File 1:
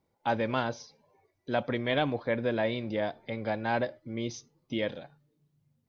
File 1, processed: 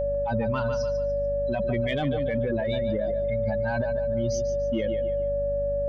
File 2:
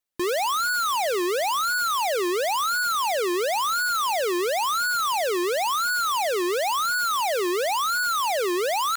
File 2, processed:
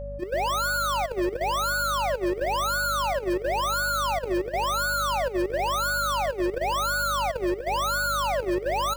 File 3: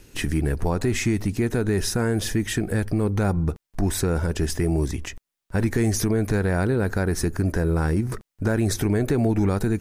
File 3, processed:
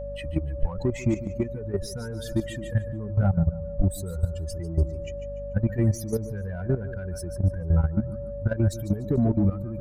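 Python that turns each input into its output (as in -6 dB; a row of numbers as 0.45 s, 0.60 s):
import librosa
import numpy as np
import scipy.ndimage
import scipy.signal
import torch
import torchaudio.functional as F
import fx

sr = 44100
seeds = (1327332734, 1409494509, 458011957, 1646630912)

p1 = fx.bin_expand(x, sr, power=3.0)
p2 = p1 + 10.0 ** (-35.0 / 20.0) * np.sin(2.0 * np.pi * 570.0 * np.arange(len(p1)) / sr)
p3 = p2 + fx.echo_feedback(p2, sr, ms=146, feedback_pct=33, wet_db=-12, dry=0)
p4 = fx.add_hum(p3, sr, base_hz=50, snr_db=17)
p5 = 10.0 ** (-27.5 / 20.0) * np.tanh(p4 / 10.0 ** (-27.5 / 20.0))
p6 = p4 + (p5 * librosa.db_to_amplitude(-3.5))
p7 = fx.high_shelf(p6, sr, hz=12000.0, db=3.5)
p8 = fx.level_steps(p7, sr, step_db=12)
p9 = fx.low_shelf(p8, sr, hz=220.0, db=9.0)
y = p9 * 10.0 ** (-26 / 20.0) / np.sqrt(np.mean(np.square(p9)))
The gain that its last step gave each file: +8.0 dB, -2.0 dB, -1.0 dB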